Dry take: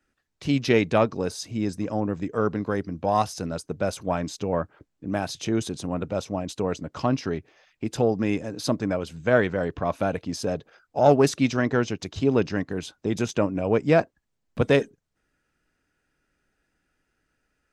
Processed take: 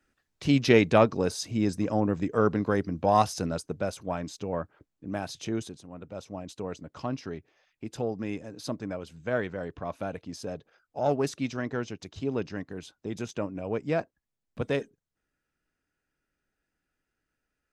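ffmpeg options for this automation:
-af "volume=9dB,afade=t=out:st=3.43:d=0.5:silence=0.473151,afade=t=out:st=5.54:d=0.3:silence=0.266073,afade=t=in:st=5.84:d=0.57:silence=0.375837"

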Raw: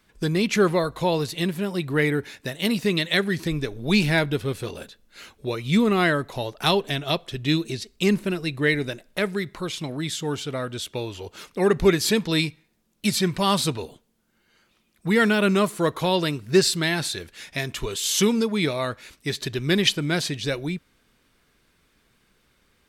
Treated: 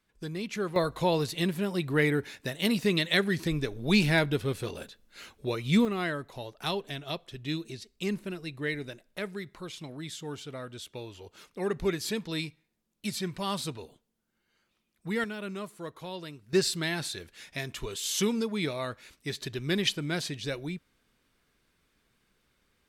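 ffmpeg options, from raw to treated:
-af "asetnsamples=n=441:p=0,asendcmd='0.76 volume volume -3.5dB;5.85 volume volume -11dB;15.24 volume volume -17.5dB;16.53 volume volume -7.5dB',volume=-13dB"

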